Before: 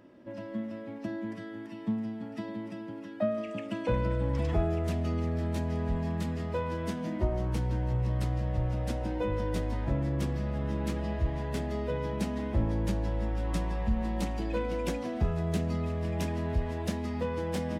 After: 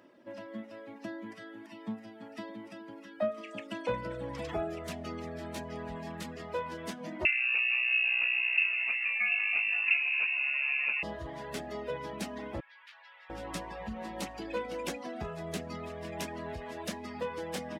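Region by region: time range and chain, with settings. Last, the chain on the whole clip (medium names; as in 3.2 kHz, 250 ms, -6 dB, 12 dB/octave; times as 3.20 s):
7.25–11.03 s: frequency inversion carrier 2.7 kHz + delay 449 ms -20.5 dB
12.60–13.30 s: Bessel high-pass 2.1 kHz, order 4 + distance through air 360 m + level flattener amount 70%
whole clip: reverb removal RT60 0.71 s; high-pass 550 Hz 6 dB/octave; trim +2 dB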